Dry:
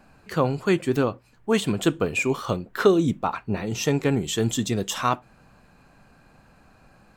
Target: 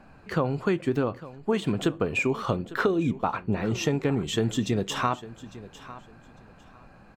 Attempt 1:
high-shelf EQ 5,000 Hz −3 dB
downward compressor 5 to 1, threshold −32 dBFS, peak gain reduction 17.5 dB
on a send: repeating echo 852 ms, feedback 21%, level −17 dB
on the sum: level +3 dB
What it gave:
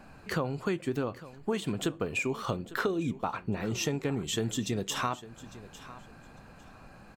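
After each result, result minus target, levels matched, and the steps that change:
8,000 Hz band +6.5 dB; downward compressor: peak gain reduction +6 dB
change: high-shelf EQ 5,000 Hz −14 dB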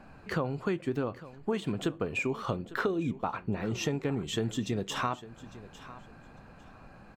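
downward compressor: peak gain reduction +6 dB
change: downward compressor 5 to 1, threshold −24.5 dBFS, peak gain reduction 11.5 dB

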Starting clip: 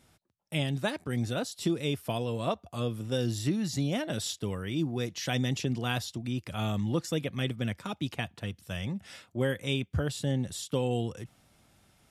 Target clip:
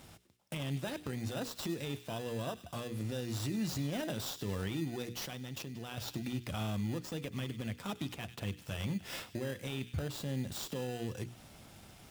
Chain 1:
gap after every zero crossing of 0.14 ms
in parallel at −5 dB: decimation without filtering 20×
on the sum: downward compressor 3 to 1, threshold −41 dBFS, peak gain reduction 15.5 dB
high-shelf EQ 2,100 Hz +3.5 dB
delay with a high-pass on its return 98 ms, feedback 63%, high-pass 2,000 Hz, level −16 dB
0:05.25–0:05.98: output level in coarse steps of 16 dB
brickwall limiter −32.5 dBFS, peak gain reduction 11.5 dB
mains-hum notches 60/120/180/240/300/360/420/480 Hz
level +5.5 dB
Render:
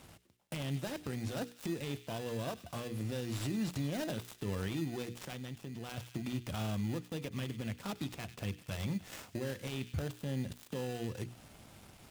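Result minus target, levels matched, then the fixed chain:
gap after every zero crossing: distortion +6 dB
gap after every zero crossing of 0.036 ms
in parallel at −5 dB: decimation without filtering 20×
on the sum: downward compressor 3 to 1, threshold −41 dBFS, peak gain reduction 15.5 dB
high-shelf EQ 2,100 Hz +3.5 dB
delay with a high-pass on its return 98 ms, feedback 63%, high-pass 2,000 Hz, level −16 dB
0:05.25–0:05.98: output level in coarse steps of 16 dB
brickwall limiter −32.5 dBFS, peak gain reduction 11 dB
mains-hum notches 60/120/180/240/300/360/420/480 Hz
level +5.5 dB

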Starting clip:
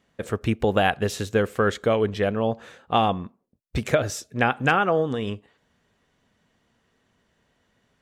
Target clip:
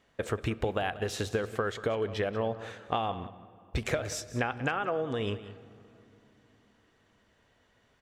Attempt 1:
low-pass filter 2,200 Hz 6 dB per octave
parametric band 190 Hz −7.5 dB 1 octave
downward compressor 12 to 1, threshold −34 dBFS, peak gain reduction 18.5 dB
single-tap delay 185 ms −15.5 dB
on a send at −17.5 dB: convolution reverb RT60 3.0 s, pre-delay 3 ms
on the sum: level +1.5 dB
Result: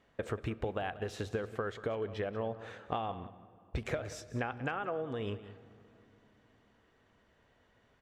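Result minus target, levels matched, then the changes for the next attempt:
8,000 Hz band −6.0 dB; downward compressor: peak gain reduction +4.5 dB
change: low-pass filter 6,600 Hz 6 dB per octave
change: downward compressor 12 to 1, threshold −28 dBFS, peak gain reduction 13.5 dB

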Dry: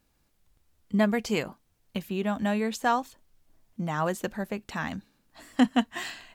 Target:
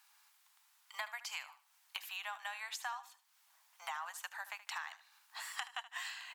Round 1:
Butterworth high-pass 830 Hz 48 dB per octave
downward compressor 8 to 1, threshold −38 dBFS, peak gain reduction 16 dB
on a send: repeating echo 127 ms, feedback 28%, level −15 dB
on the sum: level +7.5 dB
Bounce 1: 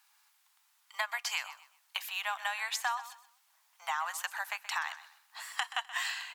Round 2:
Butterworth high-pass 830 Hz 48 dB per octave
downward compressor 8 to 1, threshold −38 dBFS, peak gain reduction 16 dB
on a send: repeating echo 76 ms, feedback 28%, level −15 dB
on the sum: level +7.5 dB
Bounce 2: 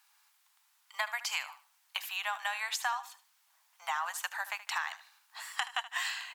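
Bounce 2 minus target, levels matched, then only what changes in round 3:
downward compressor: peak gain reduction −9 dB
change: downward compressor 8 to 1, threshold −48 dBFS, peak gain reduction 24.5 dB

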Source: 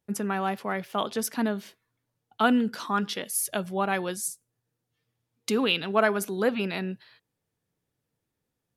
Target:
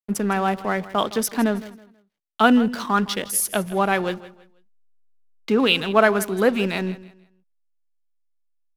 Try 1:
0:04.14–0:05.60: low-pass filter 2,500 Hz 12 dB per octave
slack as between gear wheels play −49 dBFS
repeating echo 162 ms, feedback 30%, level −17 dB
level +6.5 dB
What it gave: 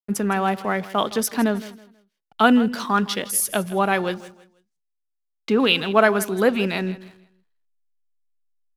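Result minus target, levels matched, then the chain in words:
slack as between gear wheels: distortion −9 dB
0:04.14–0:05.60: low-pass filter 2,500 Hz 12 dB per octave
slack as between gear wheels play −39.5 dBFS
repeating echo 162 ms, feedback 30%, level −17 dB
level +6.5 dB

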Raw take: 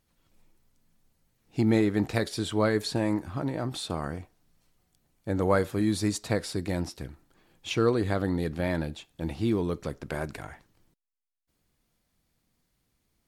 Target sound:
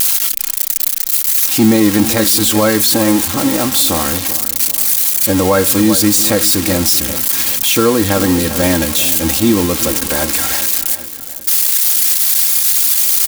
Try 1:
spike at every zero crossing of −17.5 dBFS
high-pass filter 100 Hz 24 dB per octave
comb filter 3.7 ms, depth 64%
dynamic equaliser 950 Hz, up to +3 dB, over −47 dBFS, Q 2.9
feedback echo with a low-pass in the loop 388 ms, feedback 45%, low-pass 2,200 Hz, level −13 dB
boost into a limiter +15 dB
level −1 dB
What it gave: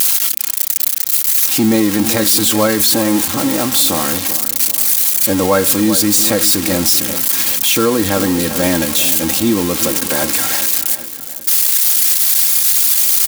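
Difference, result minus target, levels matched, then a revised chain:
125 Hz band −3.0 dB
spike at every zero crossing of −17.5 dBFS
comb filter 3.7 ms, depth 64%
dynamic equaliser 950 Hz, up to +3 dB, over −47 dBFS, Q 2.9
feedback echo with a low-pass in the loop 388 ms, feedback 45%, low-pass 2,200 Hz, level −13 dB
boost into a limiter +15 dB
level −1 dB

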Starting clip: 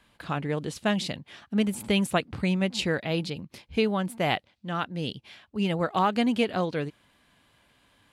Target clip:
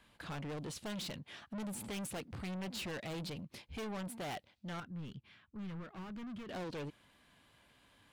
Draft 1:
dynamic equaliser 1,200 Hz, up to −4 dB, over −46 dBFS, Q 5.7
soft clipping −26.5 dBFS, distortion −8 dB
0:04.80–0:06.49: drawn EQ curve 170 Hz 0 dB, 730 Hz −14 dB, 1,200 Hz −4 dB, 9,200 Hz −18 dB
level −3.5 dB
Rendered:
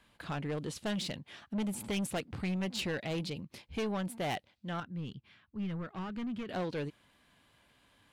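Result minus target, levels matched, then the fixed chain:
soft clipping: distortion −5 dB
dynamic equaliser 1,200 Hz, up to −4 dB, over −46 dBFS, Q 5.7
soft clipping −36 dBFS, distortion −3 dB
0:04.80–0:06.49: drawn EQ curve 170 Hz 0 dB, 730 Hz −14 dB, 1,200 Hz −4 dB, 9,200 Hz −18 dB
level −3.5 dB

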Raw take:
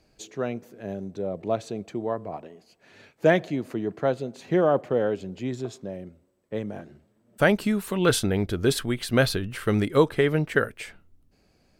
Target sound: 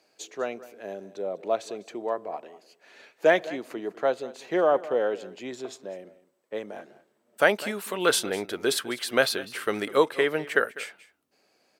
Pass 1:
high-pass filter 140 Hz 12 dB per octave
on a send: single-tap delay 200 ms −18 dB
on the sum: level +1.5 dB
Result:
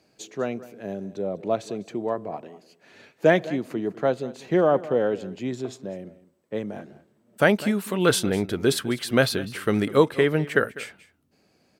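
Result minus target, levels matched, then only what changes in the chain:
125 Hz band +13.5 dB
change: high-pass filter 450 Hz 12 dB per octave

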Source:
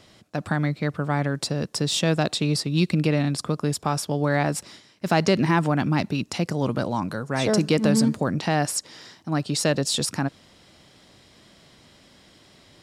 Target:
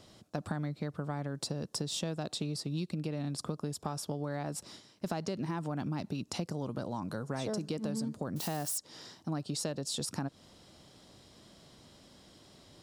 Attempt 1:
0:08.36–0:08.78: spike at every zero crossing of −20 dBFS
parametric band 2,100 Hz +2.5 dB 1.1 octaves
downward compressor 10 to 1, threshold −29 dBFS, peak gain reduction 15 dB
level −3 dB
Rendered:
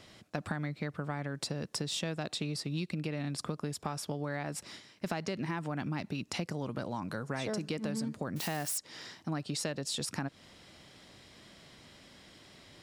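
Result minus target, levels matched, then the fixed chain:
2,000 Hz band +6.5 dB
0:08.36–0:08.78: spike at every zero crossing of −20 dBFS
parametric band 2,100 Hz −7.5 dB 1.1 octaves
downward compressor 10 to 1, threshold −29 dBFS, peak gain reduction 14 dB
level −3 dB

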